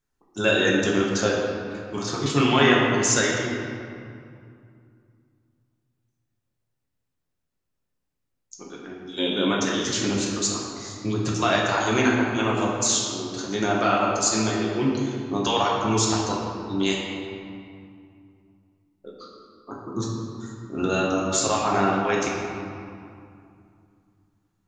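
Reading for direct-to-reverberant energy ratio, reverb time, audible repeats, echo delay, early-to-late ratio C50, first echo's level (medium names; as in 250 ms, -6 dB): -4.5 dB, 2.5 s, no echo, no echo, 0.0 dB, no echo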